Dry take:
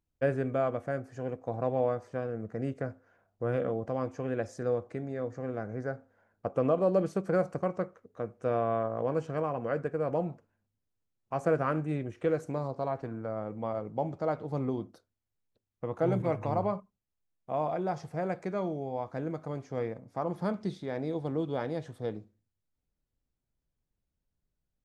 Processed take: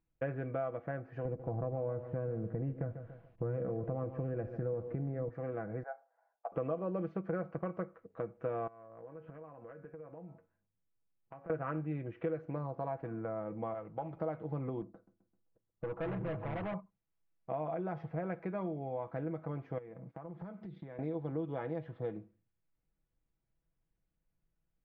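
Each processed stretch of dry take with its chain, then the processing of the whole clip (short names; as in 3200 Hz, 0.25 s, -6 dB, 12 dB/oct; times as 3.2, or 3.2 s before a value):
1.25–5.29 tilt -3.5 dB/oct + compressor 2:1, threshold -27 dBFS + lo-fi delay 0.143 s, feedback 35%, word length 10-bit, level -13 dB
5.83–6.52 ladder high-pass 680 Hz, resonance 70% + mismatched tape noise reduction decoder only
8.67–11.5 LPF 2800 Hz + resonator 93 Hz, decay 0.22 s + compressor 16:1, threshold -47 dBFS
13.74–14.17 bell 240 Hz -9 dB 2.9 oct + Doppler distortion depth 0.14 ms
14.81–16.74 LPF 1300 Hz + hard clip -34 dBFS + feedback echo 0.13 s, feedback 49%, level -19 dB
19.78–20.99 resonant low shelf 110 Hz -6 dB, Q 3 + compressor 20:1, threshold -43 dBFS + gate -56 dBFS, range -12 dB
whole clip: LPF 2700 Hz 24 dB/oct; comb 6.1 ms, depth 49%; compressor 3:1, threshold -36 dBFS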